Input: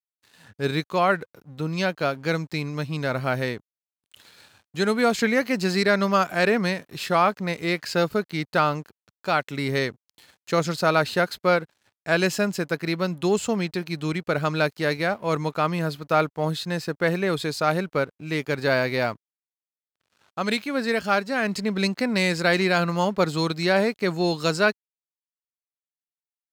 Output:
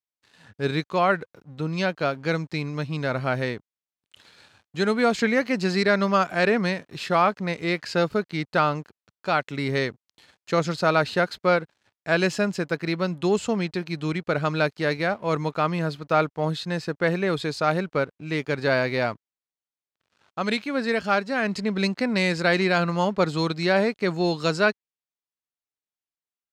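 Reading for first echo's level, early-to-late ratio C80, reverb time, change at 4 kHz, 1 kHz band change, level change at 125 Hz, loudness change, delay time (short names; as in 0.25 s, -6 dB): none, none, none, -1.5 dB, -0.5 dB, 0.0 dB, -0.5 dB, none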